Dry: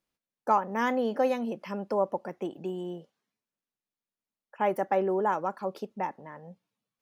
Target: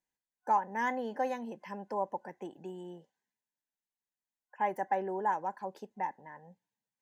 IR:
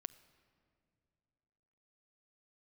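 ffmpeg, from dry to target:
-af "superequalizer=9b=2.24:10b=0.501:11b=2.24:15b=2,volume=-9dB"

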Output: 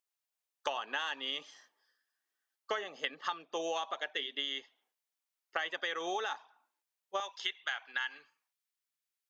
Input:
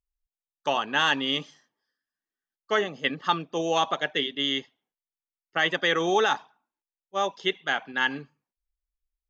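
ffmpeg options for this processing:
-af "asetnsamples=n=441:p=0,asendcmd='7.2 highpass f 1200',highpass=520,acompressor=threshold=-38dB:ratio=16,volume=5.5dB"

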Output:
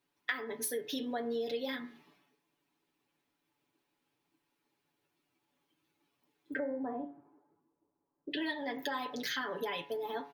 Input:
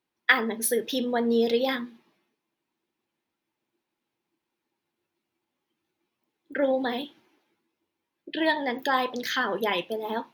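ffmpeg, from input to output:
-filter_complex "[0:a]asettb=1/sr,asplit=3[a][b][c];[a]atrim=end=6.594[d];[b]atrim=start=6.59:end=8.31,asetpts=PTS-STARTPTS,afade=t=in:d=0.004:c=qsin,afade=t=out:st=1.716:d=0.004:c=qsin,lowpass=f=1.1k:w=0.5412,lowpass=f=1.1k:w=1.3066[e];[c]atrim=start=8.306[f];[d][e]acrossfade=d=0.004:c1=hsin:c2=qsin[g];[g][f]acrossfade=d=0.004:c1=qsin:c2=hsin,aecho=1:1:7:0.85,acompressor=threshold=-36dB:ratio=4,bandreject=f=70.78:t=h:w=4,bandreject=f=141.56:t=h:w=4,bandreject=f=212.34:t=h:w=4,bandreject=f=283.12:t=h:w=4,bandreject=f=353.9:t=h:w=4,bandreject=f=424.68:t=h:w=4,bandreject=f=495.46:t=h:w=4,bandreject=f=566.24:t=h:w=4,bandreject=f=637.02:t=h:w=4,bandreject=f=707.8:t=h:w=4,bandreject=f=778.58:t=h:w=4,bandreject=f=849.36:t=h:w=4,bandreject=f=920.14:t=h:w=4,bandreject=f=990.92:t=h:w=4,bandreject=f=1.0617k:t=h:w=4,bandreject=f=1.13248k:t=h:w=4,bandreject=f=1.20326k:t=h:w=4,bandreject=f=1.27404k:t=h:w=4,bandreject=f=1.34482k:t=h:w=4,bandreject=f=1.4156k:t=h:w=4,bandreject=f=1.48638k:t=h:w=4,bandreject=f=1.55716k:t=h:w=4,bandreject=f=1.62794k:t=h:w=4,bandreject=f=1.69872k:t=h:w=4,bandreject=f=1.7695k:t=h:w=4,bandreject=f=1.84028k:t=h:w=4,bandreject=f=1.91106k:t=h:w=4,bandreject=f=1.98184k:t=h:w=4,bandreject=f=2.05262k:t=h:w=4,bandreject=f=2.1234k:t=h:w=4,bandreject=f=2.19418k:t=h:w=4,bandreject=f=2.26496k:t=h:w=4"

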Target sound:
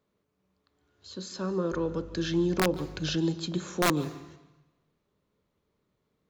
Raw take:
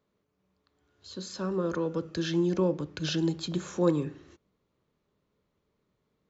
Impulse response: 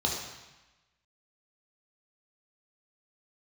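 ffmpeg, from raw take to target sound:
-filter_complex "[0:a]aeval=exprs='(mod(7.08*val(0)+1,2)-1)/7.08':c=same,asettb=1/sr,asplit=3[a][b][c];[a]atrim=end=1.724[d];[b]atrim=start=1.72:end=3.16,asetpts=PTS-STARTPTS,afade=t=in:d=0.004:c=qsin,afade=t=out:st=1.436:d=0.004:c=qsin,aeval=exprs='val(0)+0.00631*(sin(2*PI*50*n/s)+sin(2*PI*2*50*n/s)/2+sin(2*PI*3*50*n/s)/3+sin(2*PI*4*50*n/s)/4+sin(2*PI*5*50*n/s)/5)':c=same[e];[c]atrim=start=3.156[f];[d][e]acrossfade=d=0.004:c1=hsin:c2=qsin[g];[g][f]acrossfade=d=0.004:c1=qsin:c2=hsin,asplit=2[h][i];[1:a]atrim=start_sample=2205,adelay=144[j];[i][j]afir=irnorm=-1:irlink=0,volume=-26.5dB[k];[h][k]amix=inputs=2:normalize=0"

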